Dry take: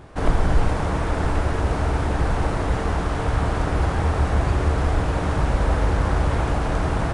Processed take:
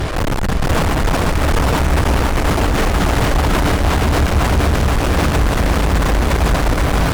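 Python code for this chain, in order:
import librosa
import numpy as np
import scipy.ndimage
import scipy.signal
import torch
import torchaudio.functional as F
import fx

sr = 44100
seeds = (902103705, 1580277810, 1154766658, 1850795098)

p1 = fx.dereverb_blind(x, sr, rt60_s=0.77)
p2 = fx.low_shelf(p1, sr, hz=87.0, db=8.5)
p3 = fx.over_compress(p2, sr, threshold_db=-27.0, ratio=-1.0)
p4 = p2 + (p3 * 10.0 ** (-2.5 / 20.0))
p5 = fx.fuzz(p4, sr, gain_db=37.0, gate_db=-38.0)
p6 = p5 + fx.echo_feedback(p5, sr, ms=489, feedback_pct=52, wet_db=-4.0, dry=0)
y = p6 * 10.0 ** (-2.0 / 20.0)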